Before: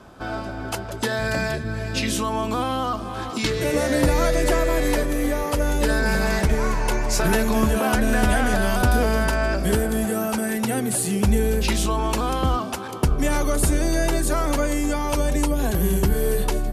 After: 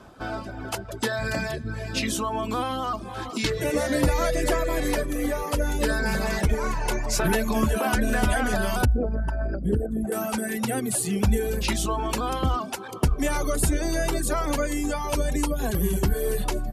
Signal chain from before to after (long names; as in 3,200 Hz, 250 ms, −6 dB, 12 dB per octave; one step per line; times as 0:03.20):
0:08.85–0:10.12: spectral envelope exaggerated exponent 2
reverb reduction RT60 0.83 s
level −1.5 dB